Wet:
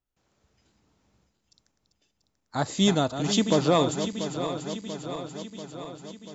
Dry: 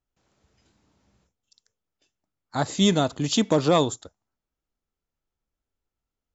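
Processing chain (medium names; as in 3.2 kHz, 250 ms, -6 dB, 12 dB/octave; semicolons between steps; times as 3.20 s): backward echo that repeats 344 ms, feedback 78%, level -9 dB; trim -2 dB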